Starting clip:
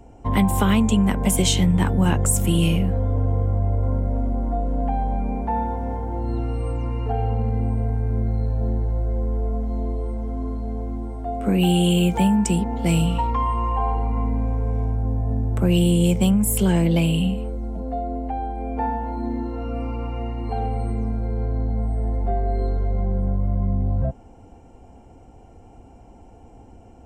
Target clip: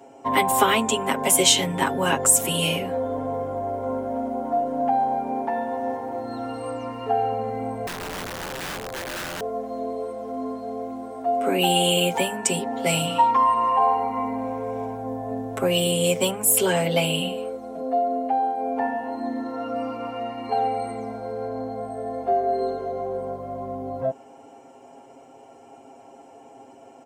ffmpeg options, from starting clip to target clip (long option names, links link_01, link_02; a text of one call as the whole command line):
ffmpeg -i in.wav -filter_complex "[0:a]highpass=390,aecho=1:1:7.4:0.94,asettb=1/sr,asplit=3[link_01][link_02][link_03];[link_01]atrim=end=7.874[link_04];[link_02]atrim=start=7.87:end=9.41,asetpts=PTS-STARTPTS,afade=type=in:duration=0.004:curve=qsin,afade=type=out:start_time=1.536:duration=0.004:curve=qsin,aeval=exprs='(mod(31.6*val(0)+1,2)-1)/31.6':channel_layout=same[link_05];[link_03]atrim=start=9.406[link_06];[link_04][link_05]acrossfade=duration=0.004:curve1=hsin:curve2=qsin[link_07];[link_07][link_06]acrossfade=duration=0.004:curve1=qsin:curve2=hsin,volume=3dB" out.wav